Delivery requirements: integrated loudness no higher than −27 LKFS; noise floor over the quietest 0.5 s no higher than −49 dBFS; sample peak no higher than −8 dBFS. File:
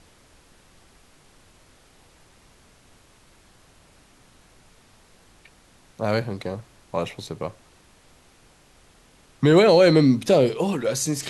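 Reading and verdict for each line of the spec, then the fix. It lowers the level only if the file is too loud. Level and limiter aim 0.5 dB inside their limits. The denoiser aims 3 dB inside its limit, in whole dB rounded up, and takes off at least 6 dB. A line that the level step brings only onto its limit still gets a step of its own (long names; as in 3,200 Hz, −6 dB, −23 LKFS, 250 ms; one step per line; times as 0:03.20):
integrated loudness −20.5 LKFS: out of spec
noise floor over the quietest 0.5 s −55 dBFS: in spec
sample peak −4.0 dBFS: out of spec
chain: level −7 dB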